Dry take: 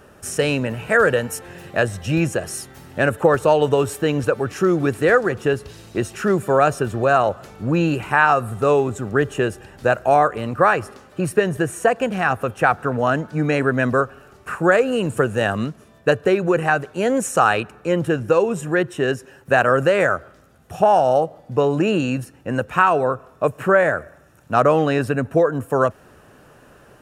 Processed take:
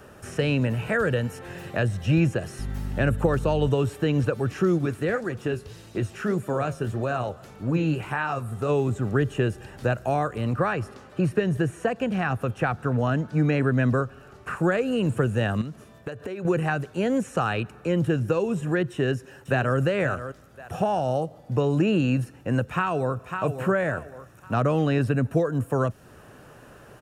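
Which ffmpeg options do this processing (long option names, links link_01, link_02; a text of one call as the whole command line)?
ffmpeg -i in.wav -filter_complex "[0:a]asettb=1/sr,asplit=3[link_01][link_02][link_03];[link_01]atrim=end=2.594[link_04];[link_02]atrim=start=2.59:end=3.69,asetpts=PTS-STARTPTS,afade=type=in:duration=0.004:curve=qsin,afade=type=out:start_time=1.096:duration=0.004:curve=qsin,aeval=exprs='val(0)+0.0355*(sin(2*PI*50*n/s)+sin(2*PI*2*50*n/s)/2+sin(2*PI*3*50*n/s)/3+sin(2*PI*4*50*n/s)/4+sin(2*PI*5*50*n/s)/5)':channel_layout=same[link_05];[link_03]atrim=start=3.686[link_06];[link_04][link_05]acrossfade=duration=0.004:curve1=hsin:curve2=qsin[link_07];[link_07][link_06]acrossfade=duration=0.004:curve1=qsin:curve2=hsin,asplit=3[link_08][link_09][link_10];[link_08]afade=type=out:start_time=4.77:duration=0.02[link_11];[link_09]flanger=delay=3.1:depth=10:regen=62:speed=1.7:shape=sinusoidal,afade=type=in:start_time=4.77:duration=0.02,afade=type=out:start_time=8.68:duration=0.02[link_12];[link_10]afade=type=in:start_time=8.68:duration=0.02[link_13];[link_11][link_12][link_13]amix=inputs=3:normalize=0,asettb=1/sr,asplit=3[link_14][link_15][link_16];[link_14]atrim=end=10.534[link_17];[link_15]atrim=start=10.53:end=14.57,asetpts=PTS-STARTPTS,afade=type=in:duration=0.004:curve=qsin,afade=type=out:start_time=4.036:duration=0.004:curve=qsin,highshelf=frequency=7500:gain=-8.5[link_18];[link_16]atrim=start=14.566[link_19];[link_17][link_18]acrossfade=duration=0.004:curve1=hsin:curve2=qsin[link_20];[link_20][link_19]acrossfade=duration=0.004:curve1=qsin:curve2=hsin,asettb=1/sr,asplit=3[link_21][link_22][link_23];[link_21]atrim=end=15.614[link_24];[link_22]atrim=start=15.61:end=16.45,asetpts=PTS-STARTPTS,afade=type=in:duration=0.004:curve=qsin,afade=type=out:start_time=0.836:duration=0.004:curve=qsin,acompressor=threshold=-29dB:ratio=10:attack=3.2:release=140:knee=1:detection=peak[link_25];[link_23]atrim=start=16.446[link_26];[link_24][link_25]acrossfade=duration=0.004:curve1=hsin:curve2=qsin[link_27];[link_27][link_26]acrossfade=duration=0.004:curve1=qsin:curve2=hsin,asplit=2[link_28][link_29];[link_29]afade=type=in:start_time=18.92:duration=0.01,afade=type=out:start_time=19.78:duration=0.01,aecho=0:1:530|1060:0.199526|0.0399052[link_30];[link_28][link_30]amix=inputs=2:normalize=0,asplit=2[link_31][link_32];[link_32]afade=type=in:start_time=22.61:duration=0.01,afade=type=out:start_time=23.43:duration=0.01,aecho=0:1:550|1100|1650:0.316228|0.0790569|0.0197642[link_33];[link_31][link_33]amix=inputs=2:normalize=0,acrossover=split=3500[link_34][link_35];[link_35]acompressor=threshold=-48dB:ratio=4:attack=1:release=60[link_36];[link_34][link_36]amix=inputs=2:normalize=0,equalizer=frequency=120:width_type=o:width=0.41:gain=3.5,acrossover=split=290|3000[link_37][link_38][link_39];[link_38]acompressor=threshold=-33dB:ratio=2[link_40];[link_37][link_40][link_39]amix=inputs=3:normalize=0" out.wav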